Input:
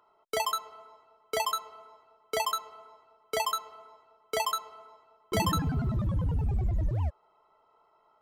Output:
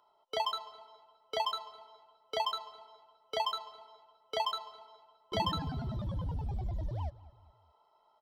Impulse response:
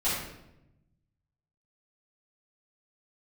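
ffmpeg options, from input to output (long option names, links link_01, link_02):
-filter_complex "[0:a]acrossover=split=4000[link_01][link_02];[link_02]acompressor=threshold=-50dB:ratio=4:attack=1:release=60[link_03];[link_01][link_03]amix=inputs=2:normalize=0,superequalizer=8b=1.78:9b=2.24:13b=3.55:14b=3.16,asplit=2[link_04][link_05];[link_05]adelay=207,lowpass=frequency=4300:poles=1,volume=-19.5dB,asplit=2[link_06][link_07];[link_07]adelay=207,lowpass=frequency=4300:poles=1,volume=0.45,asplit=2[link_08][link_09];[link_09]adelay=207,lowpass=frequency=4300:poles=1,volume=0.45[link_10];[link_04][link_06][link_08][link_10]amix=inputs=4:normalize=0,volume=-8dB"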